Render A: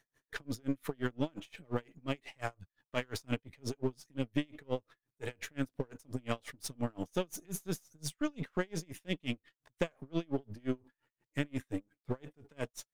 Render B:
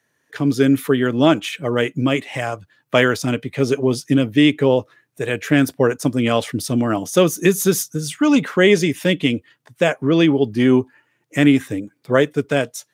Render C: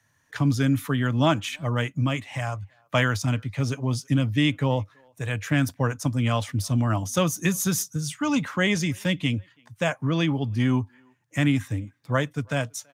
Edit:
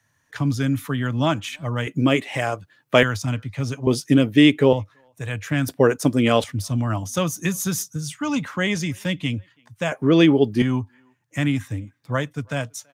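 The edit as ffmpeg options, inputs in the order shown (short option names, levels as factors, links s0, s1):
-filter_complex "[1:a]asplit=4[s0][s1][s2][s3];[2:a]asplit=5[s4][s5][s6][s7][s8];[s4]atrim=end=1.872[s9];[s0]atrim=start=1.868:end=3.032[s10];[s5]atrim=start=3.028:end=3.872[s11];[s1]atrim=start=3.868:end=4.732[s12];[s6]atrim=start=4.728:end=5.682[s13];[s2]atrim=start=5.678:end=6.442[s14];[s7]atrim=start=6.438:end=9.922[s15];[s3]atrim=start=9.918:end=10.622[s16];[s8]atrim=start=10.618[s17];[s9][s10]acrossfade=d=0.004:c1=hsin:c2=hsin[s18];[s18][s11]acrossfade=d=0.004:c1=hsin:c2=hsin[s19];[s19][s12]acrossfade=d=0.004:c1=hsin:c2=hsin[s20];[s20][s13]acrossfade=d=0.004:c1=hsin:c2=hsin[s21];[s21][s14]acrossfade=d=0.004:c1=hsin:c2=hsin[s22];[s22][s15]acrossfade=d=0.004:c1=hsin:c2=hsin[s23];[s23][s16]acrossfade=d=0.004:c1=hsin:c2=hsin[s24];[s24][s17]acrossfade=d=0.004:c1=hsin:c2=hsin"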